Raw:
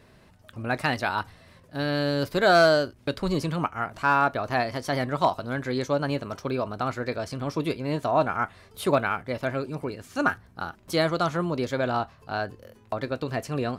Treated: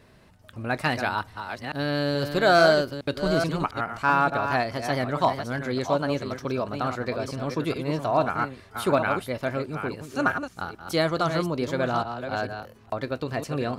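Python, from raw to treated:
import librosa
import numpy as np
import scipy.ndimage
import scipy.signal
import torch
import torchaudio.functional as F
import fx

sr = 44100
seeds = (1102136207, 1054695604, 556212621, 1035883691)

y = fx.reverse_delay(x, sr, ms=430, wet_db=-7.5)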